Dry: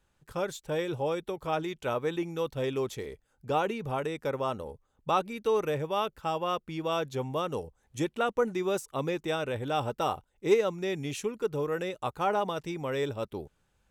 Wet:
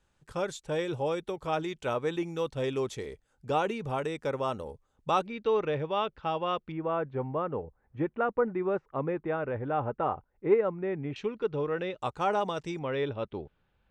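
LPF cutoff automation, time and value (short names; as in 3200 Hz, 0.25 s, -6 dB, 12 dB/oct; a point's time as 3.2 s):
LPF 24 dB/oct
9800 Hz
from 5.27 s 4200 Hz
from 6.72 s 1900 Hz
from 11.16 s 4000 Hz
from 11.98 s 8400 Hz
from 12.79 s 3700 Hz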